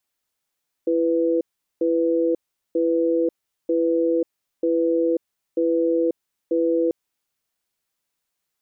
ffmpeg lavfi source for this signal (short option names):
-f lavfi -i "aevalsrc='0.1*(sin(2*PI*334*t)+sin(2*PI*496*t))*clip(min(mod(t,0.94),0.54-mod(t,0.94))/0.005,0,1)':d=6.04:s=44100"